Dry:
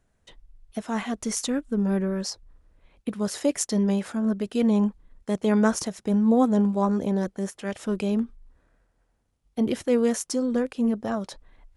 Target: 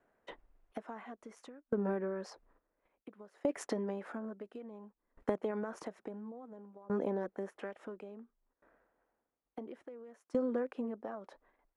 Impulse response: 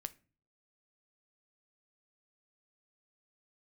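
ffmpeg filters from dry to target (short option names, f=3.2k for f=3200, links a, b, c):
-filter_complex "[0:a]agate=range=-9dB:threshold=-51dB:ratio=16:detection=peak,acrossover=split=270 2100:gain=0.0708 1 0.0794[a][b][c];[a][b][c]amix=inputs=3:normalize=0,alimiter=limit=-20.5dB:level=0:latency=1:release=58,acompressor=threshold=-42dB:ratio=12,aeval=exprs='val(0)*pow(10,-24*if(lt(mod(0.58*n/s,1),2*abs(0.58)/1000),1-mod(0.58*n/s,1)/(2*abs(0.58)/1000),(mod(0.58*n/s,1)-2*abs(0.58)/1000)/(1-2*abs(0.58)/1000))/20)':c=same,volume=13.5dB"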